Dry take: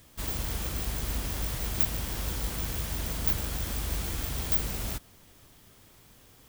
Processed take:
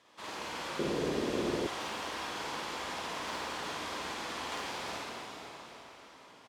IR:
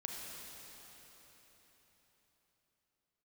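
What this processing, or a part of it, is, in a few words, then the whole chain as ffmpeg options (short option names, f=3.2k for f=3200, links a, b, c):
station announcement: -filter_complex "[0:a]highpass=380,lowpass=4.5k,equalizer=f=1k:t=o:w=0.53:g=7,aecho=1:1:52.48|137:0.794|0.355[a];[1:a]atrim=start_sample=2205[b];[a][b]afir=irnorm=-1:irlink=0,asettb=1/sr,asplit=3[c][d][e];[c]atrim=end=0.794[f];[d]atrim=start=0.79:end=1.67,asetpts=PTS-STARTPTS,afade=t=in:d=0.004:c=qsin,afade=t=out:st=0.876:d=0.004:c=qsin,lowshelf=f=610:t=q:w=1.5:g=12[g];[e]atrim=start=1.666[h];[f][g]acrossfade=d=0.004:c1=hsin:c2=qsin[i];[i][h]acrossfade=d=0.004:c1=qsin:c2=hsin"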